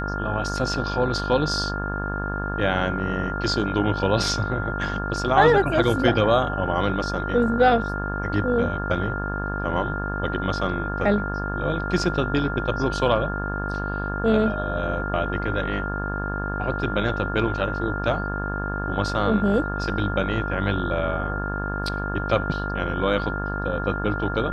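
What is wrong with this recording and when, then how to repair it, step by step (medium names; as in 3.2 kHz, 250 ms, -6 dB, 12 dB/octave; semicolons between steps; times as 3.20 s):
buzz 50 Hz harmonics 35 -29 dBFS
whine 1.4 kHz -30 dBFS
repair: band-stop 1.4 kHz, Q 30; de-hum 50 Hz, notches 35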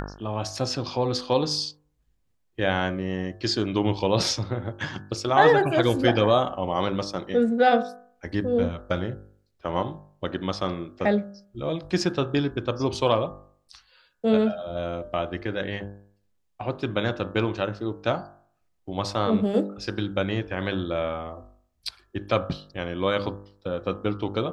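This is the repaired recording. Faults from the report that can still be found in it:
nothing left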